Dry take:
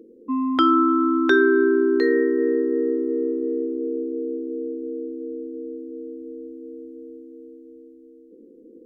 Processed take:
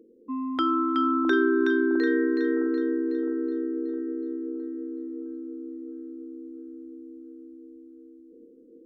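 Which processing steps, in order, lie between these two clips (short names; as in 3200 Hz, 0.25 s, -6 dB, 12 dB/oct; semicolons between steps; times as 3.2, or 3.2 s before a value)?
split-band echo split 940 Hz, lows 0.661 s, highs 0.371 s, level -4.5 dB; gain -7.5 dB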